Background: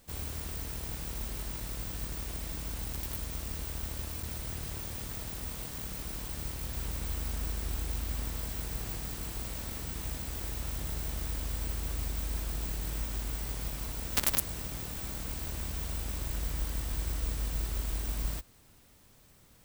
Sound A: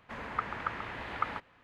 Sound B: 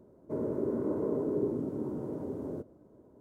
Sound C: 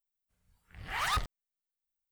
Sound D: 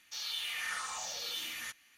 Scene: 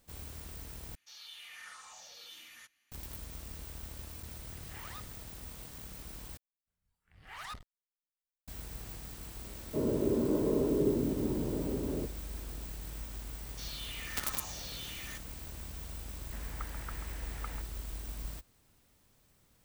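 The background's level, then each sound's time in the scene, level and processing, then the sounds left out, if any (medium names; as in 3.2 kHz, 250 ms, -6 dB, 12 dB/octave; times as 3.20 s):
background -7.5 dB
0.95 s: replace with D -12 dB
3.83 s: add C -9.5 dB + compression 2.5:1, threshold -40 dBFS
6.37 s: replace with C -12.5 dB + transformer saturation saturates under 160 Hz
9.44 s: add B + bass shelf 240 Hz +5.5 dB
13.46 s: add D -1.5 dB + saturation -39.5 dBFS
16.22 s: add A -9.5 dB + peaking EQ 1.1 kHz -5 dB 0.76 oct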